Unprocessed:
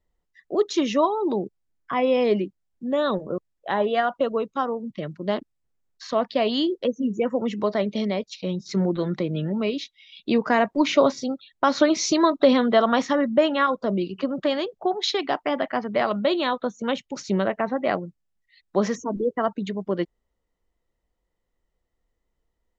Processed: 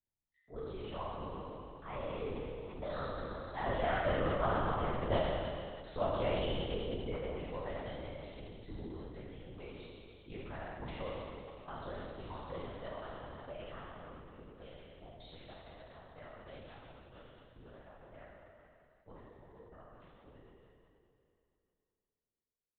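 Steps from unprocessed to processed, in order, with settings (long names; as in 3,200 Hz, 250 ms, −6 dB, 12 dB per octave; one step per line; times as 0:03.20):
peak hold with a decay on every bin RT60 2.74 s
source passing by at 0:05.03, 13 m/s, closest 8.3 metres
linear-prediction vocoder at 8 kHz whisper
level −9 dB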